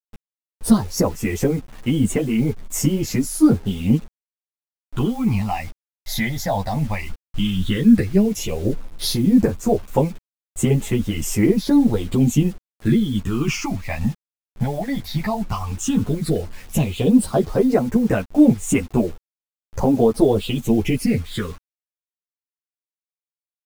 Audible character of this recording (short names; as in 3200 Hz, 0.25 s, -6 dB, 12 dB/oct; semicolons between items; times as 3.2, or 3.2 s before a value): phasing stages 8, 0.12 Hz, lowest notch 360–4600 Hz; a quantiser's noise floor 8-bit, dither none; a shimmering, thickened sound